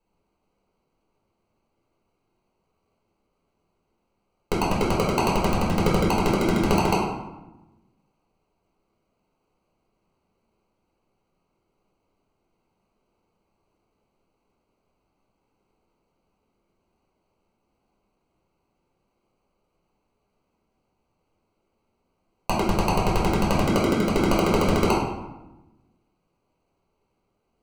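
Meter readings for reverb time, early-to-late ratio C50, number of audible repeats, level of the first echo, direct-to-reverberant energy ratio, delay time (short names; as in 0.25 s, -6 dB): 1.0 s, 1.5 dB, none, none, -6.5 dB, none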